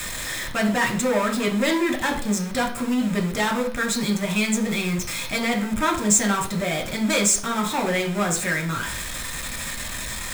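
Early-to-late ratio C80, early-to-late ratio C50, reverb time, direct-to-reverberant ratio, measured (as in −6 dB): 13.5 dB, 9.5 dB, 0.45 s, 0.5 dB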